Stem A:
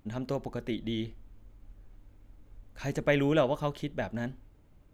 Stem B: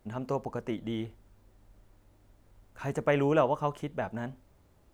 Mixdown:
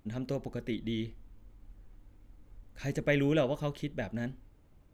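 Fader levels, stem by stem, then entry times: -2.0 dB, -12.0 dB; 0.00 s, 0.00 s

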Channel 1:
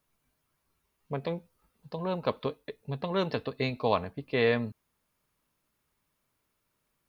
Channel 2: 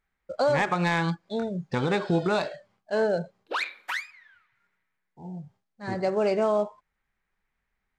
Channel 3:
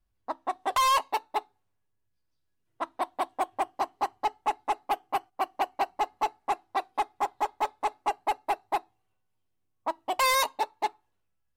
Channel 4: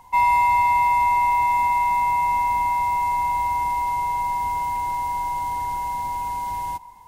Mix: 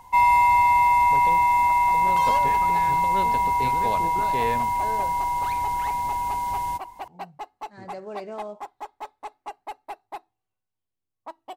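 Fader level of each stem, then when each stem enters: -4.0 dB, -12.0 dB, -8.5 dB, +0.5 dB; 0.00 s, 1.90 s, 1.40 s, 0.00 s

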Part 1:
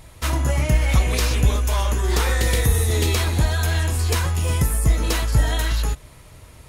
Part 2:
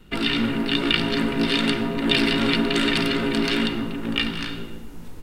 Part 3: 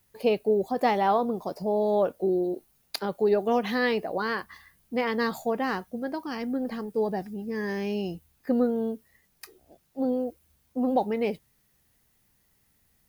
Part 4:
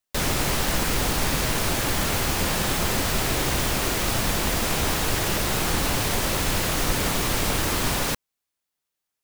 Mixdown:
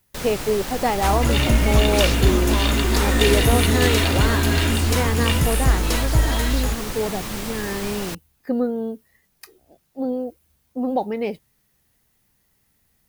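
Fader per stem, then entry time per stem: -0.5 dB, -2.0 dB, +2.0 dB, -6.5 dB; 0.80 s, 1.10 s, 0.00 s, 0.00 s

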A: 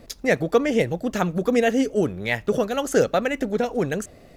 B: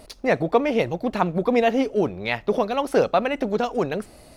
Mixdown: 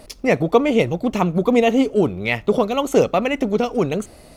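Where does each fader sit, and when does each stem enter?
-3.0 dB, +2.0 dB; 0.00 s, 0.00 s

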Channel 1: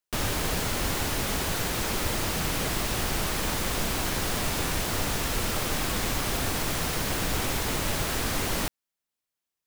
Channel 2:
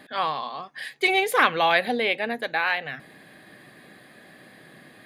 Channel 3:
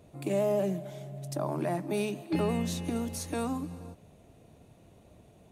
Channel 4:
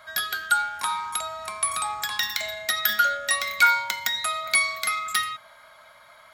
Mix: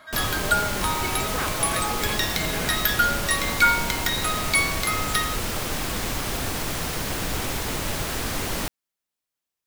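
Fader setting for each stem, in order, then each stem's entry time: +0.5 dB, -12.0 dB, -8.0 dB, -0.5 dB; 0.00 s, 0.00 s, 0.10 s, 0.00 s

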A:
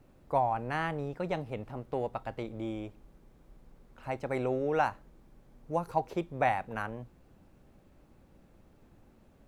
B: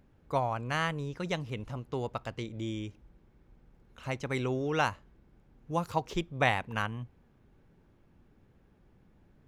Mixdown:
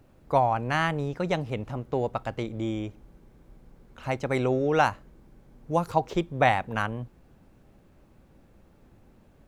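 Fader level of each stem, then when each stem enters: +2.0 dB, -1.0 dB; 0.00 s, 0.00 s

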